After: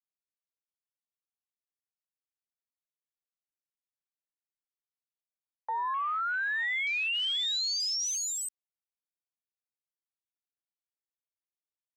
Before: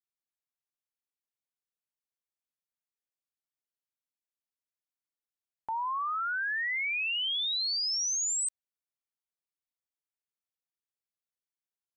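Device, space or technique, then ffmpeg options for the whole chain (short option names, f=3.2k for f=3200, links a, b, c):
over-cleaned archive recording: -af "highpass=190,lowpass=6.8k,afwtdn=0.01,volume=1dB"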